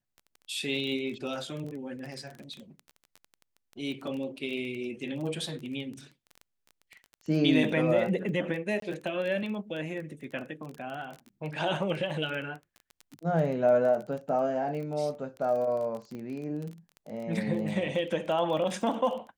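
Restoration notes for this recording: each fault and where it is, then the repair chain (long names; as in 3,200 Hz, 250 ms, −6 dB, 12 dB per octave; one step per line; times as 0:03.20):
surface crackle 20 per second −35 dBFS
0:08.80–0:08.82: drop-out 23 ms
0:16.15: click −30 dBFS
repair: click removal
repair the gap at 0:08.80, 23 ms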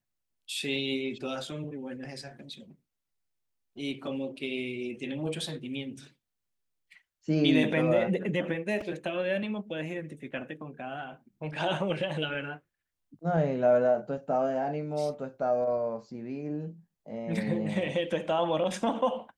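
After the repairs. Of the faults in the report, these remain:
0:16.15: click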